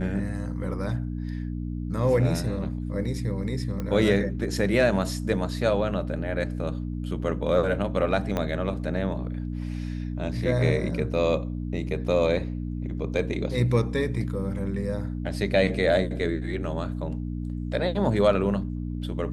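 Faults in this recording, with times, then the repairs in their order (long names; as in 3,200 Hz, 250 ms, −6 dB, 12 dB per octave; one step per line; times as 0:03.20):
mains hum 60 Hz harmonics 5 −31 dBFS
0:03.80: click −19 dBFS
0:08.37: click −14 dBFS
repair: click removal
hum removal 60 Hz, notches 5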